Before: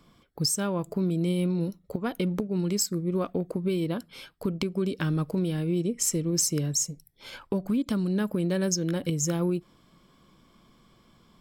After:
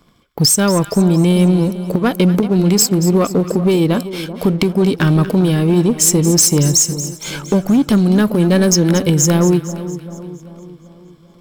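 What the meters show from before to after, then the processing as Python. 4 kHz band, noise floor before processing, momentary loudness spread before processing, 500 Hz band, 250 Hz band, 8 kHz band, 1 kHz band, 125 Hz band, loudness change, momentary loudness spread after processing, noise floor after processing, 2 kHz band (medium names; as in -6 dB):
+14.0 dB, -62 dBFS, 8 LU, +14.0 dB, +14.5 dB, +14.0 dB, +15.5 dB, +15.0 dB, +14.5 dB, 11 LU, -45 dBFS, +14.5 dB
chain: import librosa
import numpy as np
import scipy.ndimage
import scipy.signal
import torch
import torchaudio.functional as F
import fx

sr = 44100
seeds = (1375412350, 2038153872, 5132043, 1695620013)

y = fx.high_shelf(x, sr, hz=11000.0, db=3.0)
y = fx.leveller(y, sr, passes=2)
y = fx.echo_split(y, sr, split_hz=1100.0, low_ms=390, high_ms=231, feedback_pct=52, wet_db=-13)
y = y * 10.0 ** (8.0 / 20.0)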